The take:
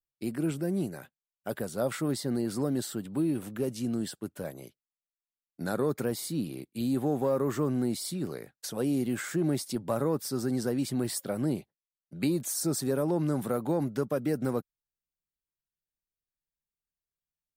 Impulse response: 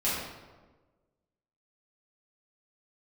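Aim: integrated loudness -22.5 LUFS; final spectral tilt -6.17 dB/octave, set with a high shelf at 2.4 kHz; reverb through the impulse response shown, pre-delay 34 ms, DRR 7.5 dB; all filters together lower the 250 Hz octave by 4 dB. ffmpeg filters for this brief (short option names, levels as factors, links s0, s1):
-filter_complex "[0:a]equalizer=f=250:t=o:g=-5,highshelf=f=2400:g=-5.5,asplit=2[s0][s1];[1:a]atrim=start_sample=2205,adelay=34[s2];[s1][s2]afir=irnorm=-1:irlink=0,volume=0.141[s3];[s0][s3]amix=inputs=2:normalize=0,volume=3.35"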